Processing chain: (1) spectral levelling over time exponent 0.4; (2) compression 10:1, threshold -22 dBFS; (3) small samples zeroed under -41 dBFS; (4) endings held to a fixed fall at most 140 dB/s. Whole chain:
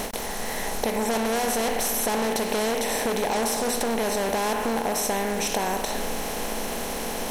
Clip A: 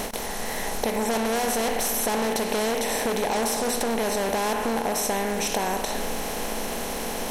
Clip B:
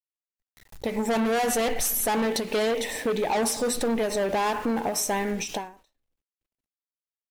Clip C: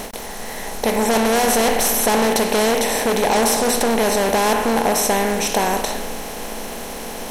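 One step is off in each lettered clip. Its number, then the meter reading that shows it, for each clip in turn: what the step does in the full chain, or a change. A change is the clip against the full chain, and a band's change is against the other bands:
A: 3, distortion -29 dB; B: 1, 250 Hz band +2.5 dB; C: 2, mean gain reduction 5.5 dB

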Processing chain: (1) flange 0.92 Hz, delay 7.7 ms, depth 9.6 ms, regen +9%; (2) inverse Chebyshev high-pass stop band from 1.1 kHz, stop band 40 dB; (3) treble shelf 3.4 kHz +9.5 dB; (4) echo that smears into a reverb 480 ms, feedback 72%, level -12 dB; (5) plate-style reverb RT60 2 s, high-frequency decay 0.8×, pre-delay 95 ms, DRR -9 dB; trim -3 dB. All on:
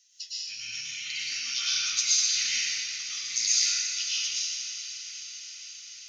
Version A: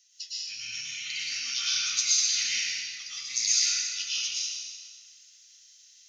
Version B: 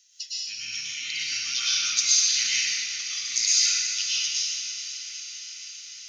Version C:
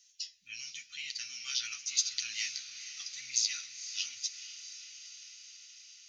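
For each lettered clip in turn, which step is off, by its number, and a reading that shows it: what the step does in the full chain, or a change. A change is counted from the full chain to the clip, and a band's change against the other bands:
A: 4, momentary loudness spread change -2 LU; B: 1, crest factor change -1.5 dB; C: 5, crest factor change +5.0 dB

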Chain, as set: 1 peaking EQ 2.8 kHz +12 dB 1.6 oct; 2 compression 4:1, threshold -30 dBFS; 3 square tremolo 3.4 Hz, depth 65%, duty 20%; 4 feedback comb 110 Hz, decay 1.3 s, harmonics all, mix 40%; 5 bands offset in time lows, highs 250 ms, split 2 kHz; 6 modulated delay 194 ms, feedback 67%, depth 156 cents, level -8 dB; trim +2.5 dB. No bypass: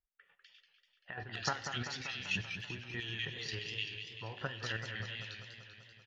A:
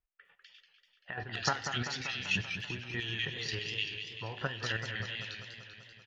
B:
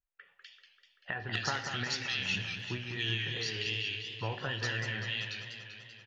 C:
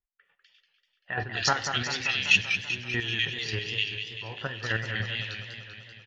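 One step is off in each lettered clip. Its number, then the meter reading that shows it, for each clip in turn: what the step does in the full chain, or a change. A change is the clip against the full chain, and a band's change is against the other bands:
4, loudness change +4.0 LU; 3, crest factor change -4.0 dB; 2, mean gain reduction 8.5 dB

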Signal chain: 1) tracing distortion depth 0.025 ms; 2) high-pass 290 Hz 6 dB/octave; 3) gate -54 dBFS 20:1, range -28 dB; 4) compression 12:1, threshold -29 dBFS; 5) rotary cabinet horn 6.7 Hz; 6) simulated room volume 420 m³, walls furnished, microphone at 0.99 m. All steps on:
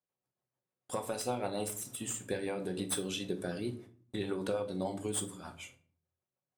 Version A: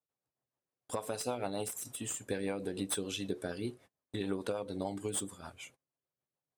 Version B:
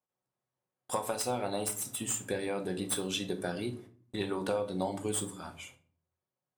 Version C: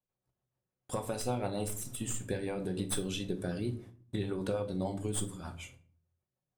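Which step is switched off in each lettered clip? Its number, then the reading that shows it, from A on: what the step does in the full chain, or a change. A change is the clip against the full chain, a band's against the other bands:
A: 6, echo-to-direct -6.0 dB to none; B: 5, 125 Hz band -2.0 dB; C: 2, 125 Hz band +7.0 dB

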